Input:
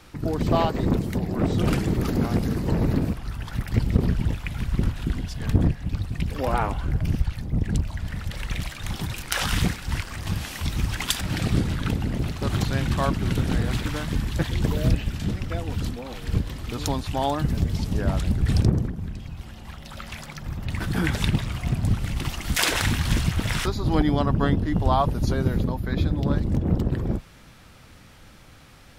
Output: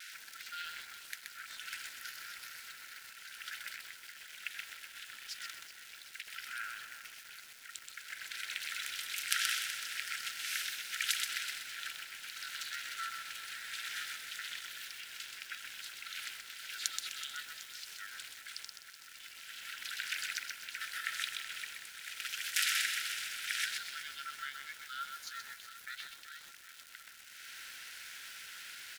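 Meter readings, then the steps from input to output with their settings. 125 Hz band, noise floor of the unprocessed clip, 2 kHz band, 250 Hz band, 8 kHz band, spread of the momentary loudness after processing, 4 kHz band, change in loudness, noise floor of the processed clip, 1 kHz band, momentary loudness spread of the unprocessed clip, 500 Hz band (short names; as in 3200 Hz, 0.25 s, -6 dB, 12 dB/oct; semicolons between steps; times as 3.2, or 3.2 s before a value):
under -40 dB, -48 dBFS, -5.0 dB, under -40 dB, -4.5 dB, 14 LU, -5.0 dB, -14.0 dB, -54 dBFS, -17.0 dB, 9 LU, under -35 dB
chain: compressor 3:1, threshold -38 dBFS, peak gain reduction 19 dB; ring modulator 240 Hz; crackle 510/s -49 dBFS; vibrato 0.73 Hz 20 cents; brick-wall FIR high-pass 1300 Hz; on a send: feedback echo 0.376 s, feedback 57%, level -13 dB; on the sum: lo-fi delay 0.127 s, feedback 35%, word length 10-bit, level -4 dB; gain +8.5 dB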